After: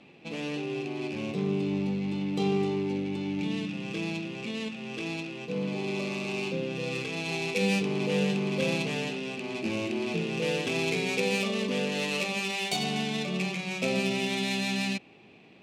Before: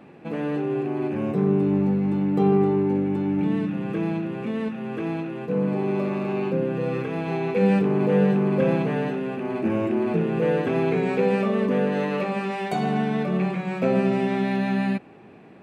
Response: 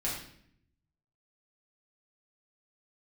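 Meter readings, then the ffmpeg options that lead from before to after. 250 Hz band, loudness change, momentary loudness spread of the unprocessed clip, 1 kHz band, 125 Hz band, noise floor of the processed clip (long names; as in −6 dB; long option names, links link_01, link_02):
−8.0 dB, −6.0 dB, 8 LU, −8.0 dB, −8.0 dB, −54 dBFS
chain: -af "adynamicsmooth=sensitivity=7.5:basefreq=3000,aexciter=amount=11.8:drive=3.8:freq=2400,volume=-8dB"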